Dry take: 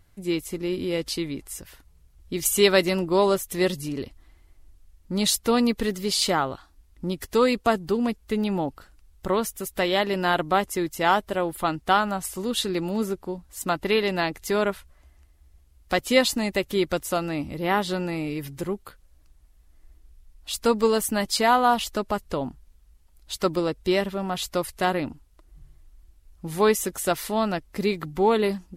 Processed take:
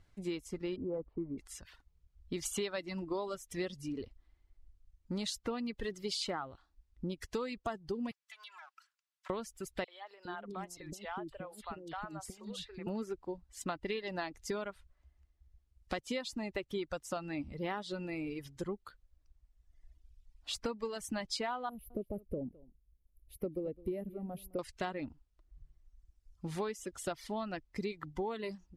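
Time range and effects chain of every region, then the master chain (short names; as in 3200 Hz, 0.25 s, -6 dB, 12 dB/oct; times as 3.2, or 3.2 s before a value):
0.76–1.38 LPF 1100 Hz 24 dB/oct + hard clip -18.5 dBFS
8.11–9.3 minimum comb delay 3 ms + HPF 1100 Hz 24 dB/oct + compressor 4:1, threshold -41 dBFS
9.84–12.87 compressor, threshold -31 dBFS + three bands offset in time highs, mids, lows 40/410 ms, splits 450/3200 Hz
21.69–24.59 EQ curve 520 Hz 0 dB, 970 Hz -22 dB, 1600 Hz -24 dB, 2300 Hz -15 dB, 3500 Hz -26 dB, 7500 Hz -27 dB, 11000 Hz +9 dB + echo 0.211 s -14.5 dB
whole clip: LPF 6500 Hz 12 dB/oct; reverb removal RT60 2 s; compressor 12:1, threshold -28 dBFS; gain -5.5 dB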